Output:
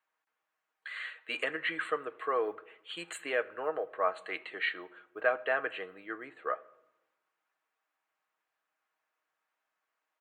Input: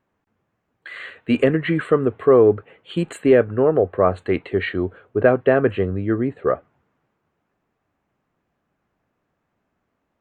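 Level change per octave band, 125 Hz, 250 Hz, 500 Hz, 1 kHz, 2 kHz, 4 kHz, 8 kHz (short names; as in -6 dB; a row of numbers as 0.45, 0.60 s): under -35 dB, -27.0 dB, -18.0 dB, -8.5 dB, -5.5 dB, -4.5 dB, n/a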